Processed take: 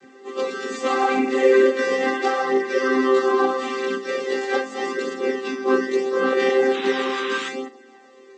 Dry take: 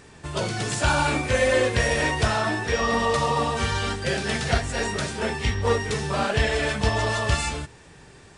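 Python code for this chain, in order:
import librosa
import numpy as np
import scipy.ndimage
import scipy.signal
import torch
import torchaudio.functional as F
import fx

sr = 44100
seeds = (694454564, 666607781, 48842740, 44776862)

y = fx.chord_vocoder(x, sr, chord='bare fifth', root=60)
y = fx.chorus_voices(y, sr, voices=2, hz=0.39, base_ms=19, depth_ms=2.3, mix_pct=65)
y = fx.spec_paint(y, sr, seeds[0], shape='noise', start_s=6.74, length_s=0.75, low_hz=910.0, high_hz=4000.0, level_db=-40.0)
y = y * librosa.db_to_amplitude(7.0)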